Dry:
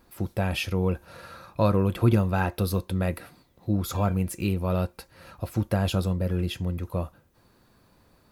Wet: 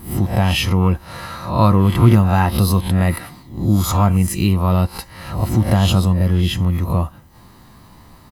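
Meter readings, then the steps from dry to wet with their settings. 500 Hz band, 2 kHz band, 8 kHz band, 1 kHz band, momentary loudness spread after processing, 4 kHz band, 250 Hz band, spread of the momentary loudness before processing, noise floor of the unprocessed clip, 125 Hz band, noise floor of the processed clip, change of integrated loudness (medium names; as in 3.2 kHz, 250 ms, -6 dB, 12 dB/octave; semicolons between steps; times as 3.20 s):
+5.0 dB, +8.5 dB, +12.5 dB, +11.5 dB, 12 LU, +12.0 dB, +10.0 dB, 16 LU, -62 dBFS, +11.5 dB, -45 dBFS, +10.0 dB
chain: reverse spectral sustain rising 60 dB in 0.41 s; comb 1 ms, depth 52%; in parallel at +2 dB: compression, threshold -33 dBFS, peak gain reduction 18.5 dB; on the sum: trim +5.5 dB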